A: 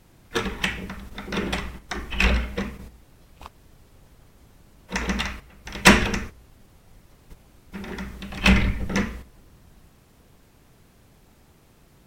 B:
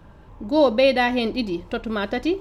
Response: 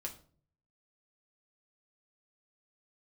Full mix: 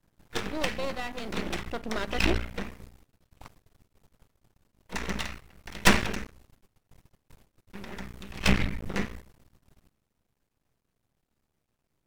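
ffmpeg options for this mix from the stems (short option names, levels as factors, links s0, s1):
-filter_complex "[0:a]volume=0.75[s0];[1:a]bandreject=f=50:t=h:w=6,bandreject=f=100:t=h:w=6,bandreject=f=150:t=h:w=6,bandreject=f=200:t=h:w=6,bandreject=f=250:t=h:w=6,asoftclip=type=tanh:threshold=0.299,volume=0.708,afade=t=in:st=1.49:d=0.31:silence=0.421697[s1];[s0][s1]amix=inputs=2:normalize=0,agate=range=0.141:threshold=0.00251:ratio=16:detection=peak,aeval=exprs='max(val(0),0)':c=same"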